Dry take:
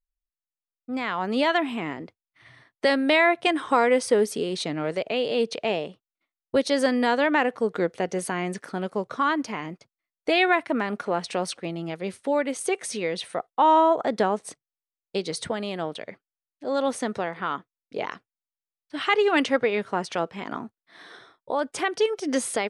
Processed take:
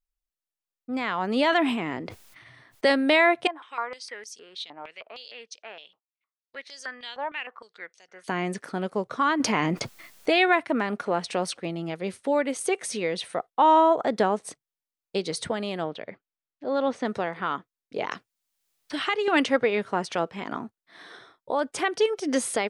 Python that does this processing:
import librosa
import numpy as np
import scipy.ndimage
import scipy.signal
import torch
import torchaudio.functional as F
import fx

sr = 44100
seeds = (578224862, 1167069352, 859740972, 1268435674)

y = fx.sustainer(x, sr, db_per_s=41.0, at=(1.31, 2.92))
y = fx.filter_held_bandpass(y, sr, hz=6.5, low_hz=890.0, high_hz=5900.0, at=(3.47, 8.28))
y = fx.env_flatten(y, sr, amount_pct=70, at=(9.4, 10.33))
y = fx.air_absorb(y, sr, metres=160.0, at=(15.84, 17.05))
y = fx.band_squash(y, sr, depth_pct=70, at=(18.11, 19.28))